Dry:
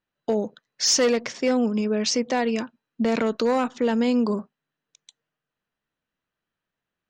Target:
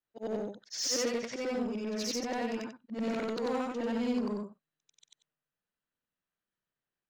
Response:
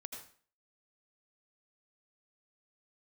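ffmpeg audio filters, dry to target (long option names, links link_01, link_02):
-filter_complex "[0:a]afftfilt=real='re':imag='-im':win_size=8192:overlap=0.75,asplit=2[link_01][link_02];[link_02]aeval=exprs='0.0316*(abs(mod(val(0)/0.0316+3,4)-2)-1)':channel_layout=same,volume=-9dB[link_03];[link_01][link_03]amix=inputs=2:normalize=0,volume=-6.5dB"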